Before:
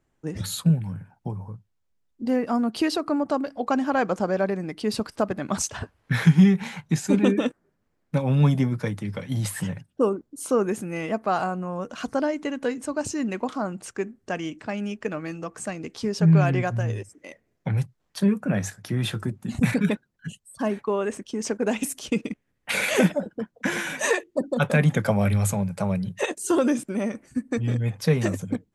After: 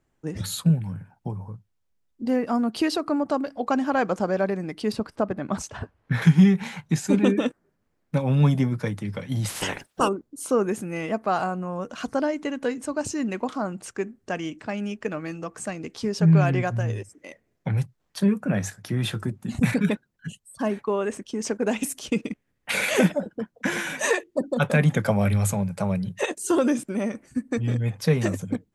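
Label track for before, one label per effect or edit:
4.920000	6.220000	treble shelf 2.6 kHz -10.5 dB
9.480000	10.070000	spectral peaks clipped ceiling under each frame's peak by 29 dB

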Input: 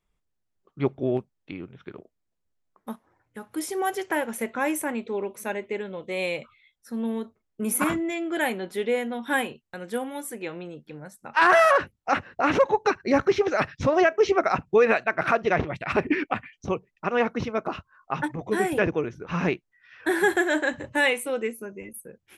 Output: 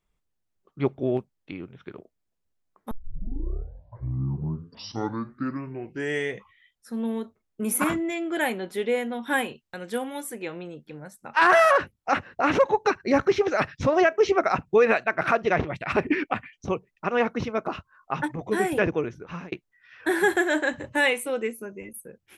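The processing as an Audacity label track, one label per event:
2.910000	2.910000	tape start 4.06 s
9.480000	10.240000	peaking EQ 4.2 kHz +3.5 dB 1.8 oct
19.110000	19.520000	fade out

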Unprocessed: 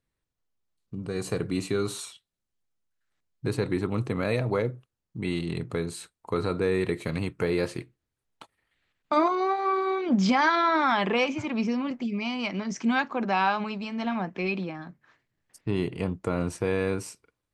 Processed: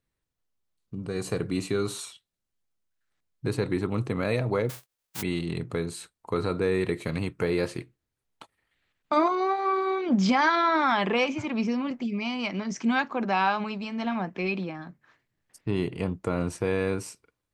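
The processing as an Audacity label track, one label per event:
4.690000	5.210000	formants flattened exponent 0.1

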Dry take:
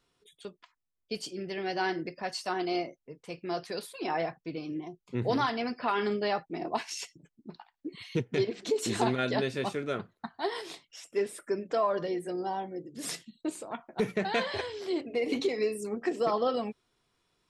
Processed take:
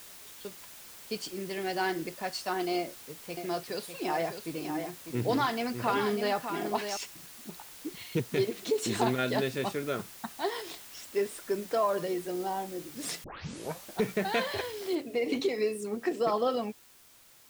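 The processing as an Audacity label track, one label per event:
2.770000	6.970000	delay 600 ms -7.5 dB
13.240000	13.240000	tape start 0.70 s
14.950000	14.950000	noise floor step -49 dB -58 dB

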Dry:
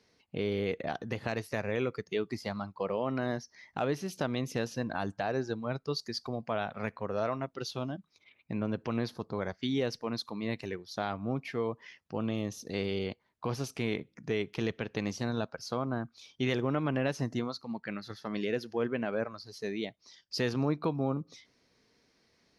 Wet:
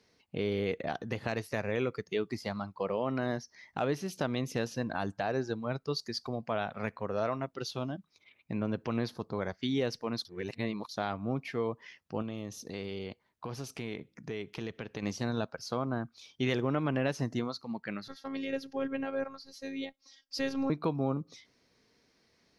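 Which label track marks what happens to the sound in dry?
10.250000	10.890000	reverse
12.220000	15.030000	compression 2:1, threshold -38 dBFS
18.080000	20.700000	robot voice 270 Hz

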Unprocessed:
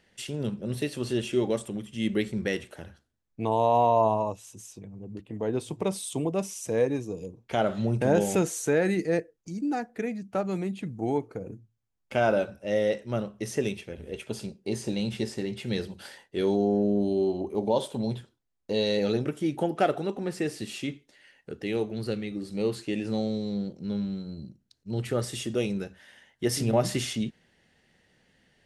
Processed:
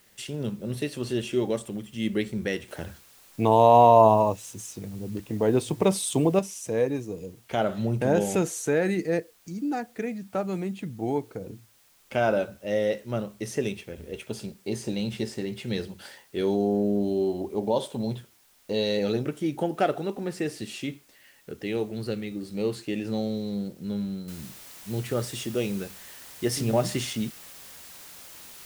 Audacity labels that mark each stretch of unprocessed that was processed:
2.680000	6.390000	gain +6.5 dB
24.280000	24.280000	noise floor step -61 dB -46 dB

